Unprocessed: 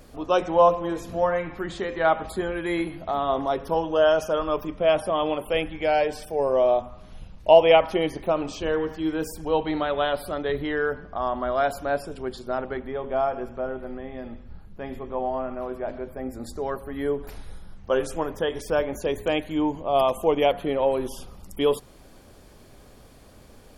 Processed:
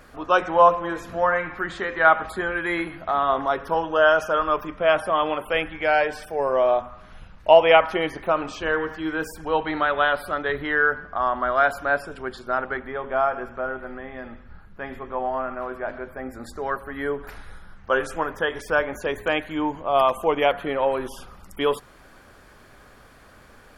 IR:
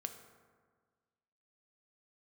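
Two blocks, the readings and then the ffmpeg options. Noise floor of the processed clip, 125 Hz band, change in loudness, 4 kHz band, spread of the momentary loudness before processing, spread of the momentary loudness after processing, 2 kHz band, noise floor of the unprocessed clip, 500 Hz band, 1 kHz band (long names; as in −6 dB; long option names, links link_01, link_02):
−50 dBFS, −3.0 dB, +2.0 dB, +1.0 dB, 13 LU, 14 LU, +9.5 dB, −49 dBFS, 0.0 dB, +4.0 dB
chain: -af "equalizer=frequency=1500:width=1:gain=14,volume=-3dB"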